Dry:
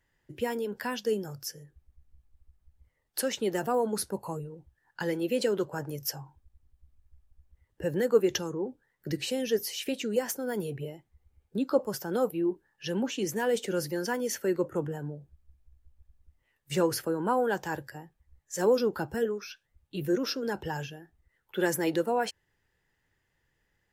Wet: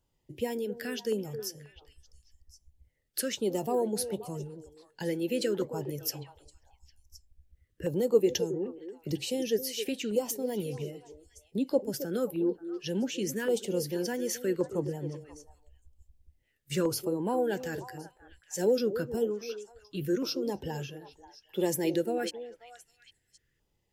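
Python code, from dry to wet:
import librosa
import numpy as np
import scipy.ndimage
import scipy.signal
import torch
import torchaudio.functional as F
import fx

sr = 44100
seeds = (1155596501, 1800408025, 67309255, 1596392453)

y = fx.filter_lfo_notch(x, sr, shape='saw_down', hz=0.89, low_hz=780.0, high_hz=1900.0, q=0.75)
y = fx.echo_stepped(y, sr, ms=267, hz=380.0, octaves=1.4, feedback_pct=70, wet_db=-8.5)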